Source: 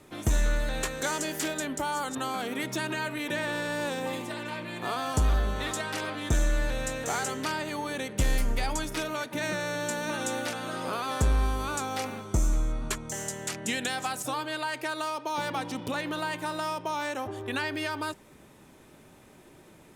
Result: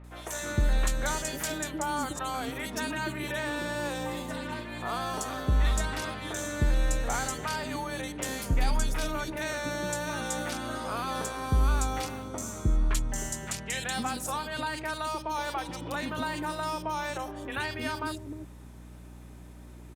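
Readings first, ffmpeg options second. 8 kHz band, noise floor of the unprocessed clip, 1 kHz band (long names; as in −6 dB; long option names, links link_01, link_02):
0.0 dB, −54 dBFS, −0.5 dB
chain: -filter_complex "[0:a]acrossover=split=430|2600[link_01][link_02][link_03];[link_03]adelay=40[link_04];[link_01]adelay=310[link_05];[link_05][link_02][link_04]amix=inputs=3:normalize=0,aeval=exprs='val(0)+0.00501*(sin(2*PI*60*n/s)+sin(2*PI*2*60*n/s)/2+sin(2*PI*3*60*n/s)/3+sin(2*PI*4*60*n/s)/4+sin(2*PI*5*60*n/s)/5)':channel_layout=same"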